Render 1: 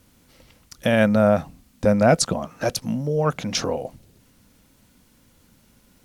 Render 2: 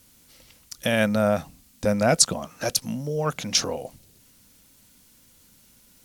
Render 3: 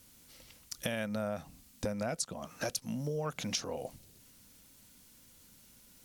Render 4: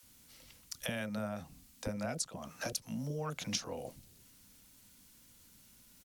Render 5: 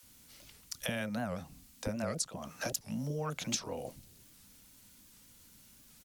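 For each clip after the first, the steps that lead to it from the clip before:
treble shelf 2.8 kHz +12 dB; trim -5 dB
compression 16:1, threshold -28 dBFS, peak gain reduction 17.5 dB; trim -3.5 dB
bands offset in time highs, lows 30 ms, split 500 Hz; trim -1.5 dB
warped record 78 rpm, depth 250 cents; trim +2 dB

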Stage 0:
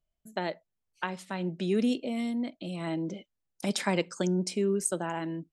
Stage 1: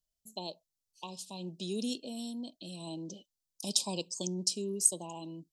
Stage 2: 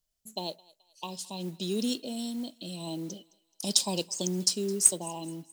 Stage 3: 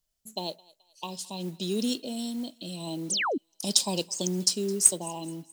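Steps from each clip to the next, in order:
Chebyshev band-stop 1.1–2.5 kHz, order 5; resonant high shelf 3.2 kHz +13 dB, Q 1.5; trim -8.5 dB
modulation noise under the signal 22 dB; thinning echo 214 ms, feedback 47%, high-pass 670 Hz, level -22 dB; trim +5 dB
painted sound fall, 3.10–3.38 s, 230–10000 Hz -29 dBFS; trim +1.5 dB

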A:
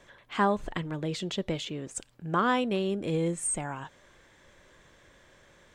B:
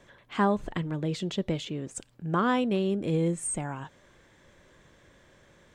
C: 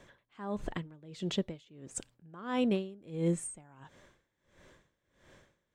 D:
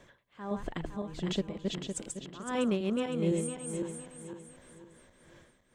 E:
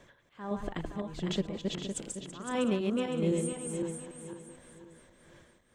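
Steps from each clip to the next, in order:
peaking EQ 160 Hz +5.5 dB 3 oct; trim -2 dB
logarithmic tremolo 1.5 Hz, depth 24 dB
backward echo that repeats 255 ms, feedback 59%, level -2 dB
chunks repeated in reverse 147 ms, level -10 dB

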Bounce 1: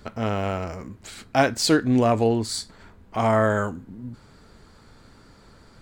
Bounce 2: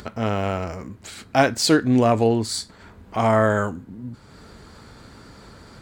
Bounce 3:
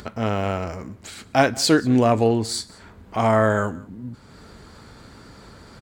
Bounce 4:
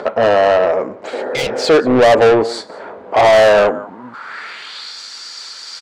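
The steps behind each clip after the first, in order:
high-pass 42 Hz; upward compressor, threshold -39 dBFS; trim +2 dB
delay 183 ms -23 dB
band-pass sweep 550 Hz -> 5.4 kHz, 3.69–5.00 s; overdrive pedal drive 27 dB, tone 5.6 kHz, clips at -10.5 dBFS; spectral replace 1.16–1.62 s, 220–2000 Hz after; trim +8 dB

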